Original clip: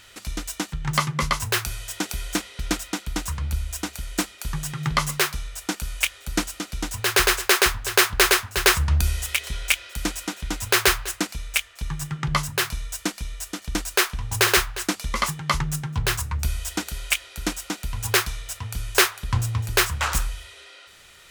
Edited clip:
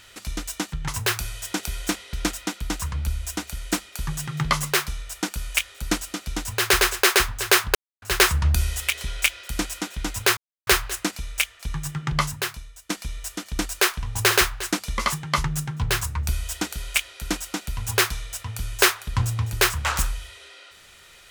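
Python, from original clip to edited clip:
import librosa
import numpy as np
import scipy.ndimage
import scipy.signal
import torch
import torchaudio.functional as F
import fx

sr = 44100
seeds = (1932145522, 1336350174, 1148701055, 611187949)

y = fx.edit(x, sr, fx.cut(start_s=0.88, length_s=0.46),
    fx.silence(start_s=8.21, length_s=0.27),
    fx.insert_silence(at_s=10.83, length_s=0.3),
    fx.fade_out_to(start_s=12.44, length_s=0.62, curve='qua', floor_db=-15.5), tone=tone)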